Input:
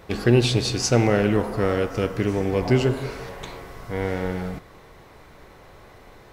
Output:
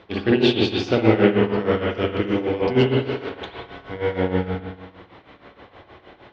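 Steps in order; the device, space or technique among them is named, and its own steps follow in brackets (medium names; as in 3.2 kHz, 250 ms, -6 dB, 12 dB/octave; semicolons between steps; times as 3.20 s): combo amplifier with spring reverb and tremolo (spring tank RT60 1.2 s, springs 54 ms, chirp 70 ms, DRR -3.5 dB; tremolo 6.4 Hz, depth 76%; cabinet simulation 88–4500 Hz, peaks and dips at 150 Hz -10 dB, 300 Hz +4 dB, 3.2 kHz +7 dB)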